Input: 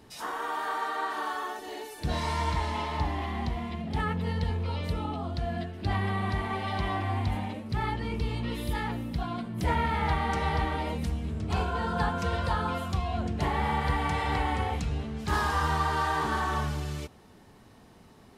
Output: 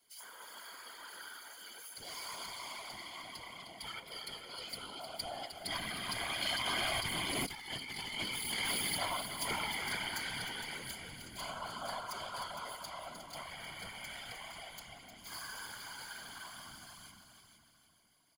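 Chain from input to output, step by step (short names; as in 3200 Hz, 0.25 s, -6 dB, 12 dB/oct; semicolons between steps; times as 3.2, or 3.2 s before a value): tracing distortion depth 0.043 ms; Doppler pass-by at 7.57, 11 m/s, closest 1.7 m; ripple EQ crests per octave 1.8, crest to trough 17 dB; in parallel at -3.5 dB: overloaded stage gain 29 dB; on the sum: pre-emphasis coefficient 0.97; notch 6900 Hz, Q 11; comb 5.8 ms, depth 99%; on a send: multi-head echo 0.154 s, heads second and third, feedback 43%, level -9 dB; on the sum: whisperiser; negative-ratio compressor -54 dBFS, ratio -1; gain +16.5 dB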